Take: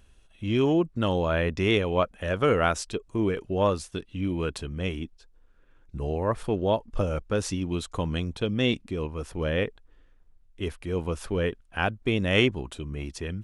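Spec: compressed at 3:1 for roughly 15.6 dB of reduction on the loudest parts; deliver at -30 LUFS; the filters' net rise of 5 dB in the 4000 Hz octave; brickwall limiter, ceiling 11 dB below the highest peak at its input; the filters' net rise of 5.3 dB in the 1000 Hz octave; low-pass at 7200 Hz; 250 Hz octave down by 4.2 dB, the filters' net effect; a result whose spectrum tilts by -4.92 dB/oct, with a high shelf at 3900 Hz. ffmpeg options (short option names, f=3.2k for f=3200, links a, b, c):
-af "lowpass=7.2k,equalizer=f=250:t=o:g=-6.5,equalizer=f=1k:t=o:g=6.5,highshelf=f=3.9k:g=5.5,equalizer=f=4k:t=o:g=3.5,acompressor=threshold=-37dB:ratio=3,volume=11dB,alimiter=limit=-18.5dB:level=0:latency=1"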